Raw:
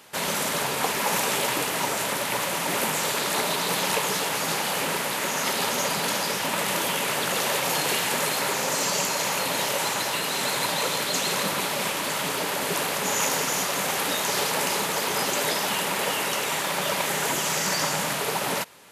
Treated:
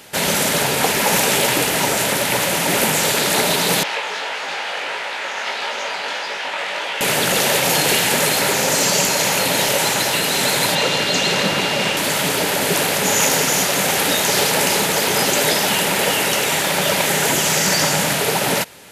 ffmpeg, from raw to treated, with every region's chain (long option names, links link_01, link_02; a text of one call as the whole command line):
ffmpeg -i in.wav -filter_complex "[0:a]asettb=1/sr,asplit=3[link_01][link_02][link_03];[link_01]atrim=end=3.834[link_04];[link_02]atrim=start=3.83:end=7.01,asetpts=PTS-STARTPTS,afade=type=in:duration=0.004:curve=qsin,afade=type=out:start_time=3.176:duration=0.004:curve=qsin,flanger=delay=17.5:depth=3.8:speed=1.6,highpass=700,lowpass=3300[link_05];[link_03]atrim=start=7.006[link_06];[link_04][link_05]acrossfade=duration=0.004:curve1=hsin:curve2=qsin[link_07];[link_07][link_06]acrossfade=duration=0.004:curve1=qsin:curve2=hsin,asettb=1/sr,asplit=3[link_08][link_09][link_10];[link_08]atrim=end=10.754[link_11];[link_09]atrim=start=10.75:end=11.97,asetpts=PTS-STARTPTS,afade=type=in:duration=0.004:curve=qsin,afade=type=out:start_time=1.216:duration=0.004:curve=qsin,acrossover=split=6600[link_12][link_13];[link_13]acompressor=threshold=-47dB:ratio=4:attack=1:release=60[link_14];[link_12][link_14]amix=inputs=2:normalize=0,aeval=exprs='val(0)+0.02*sin(2*PI*2800*n/s)':channel_layout=same[link_15];[link_10]atrim=start=11.966[link_16];[link_11][link_15]acrossfade=duration=0.004:curve1=hsin:curve2=qsin[link_17];[link_17][link_16]acrossfade=duration=0.004:curve1=qsin:curve2=hsin,equalizer=frequency=1100:width=3.4:gain=-7.5,acontrast=80,lowshelf=frequency=80:gain=9,volume=2dB" out.wav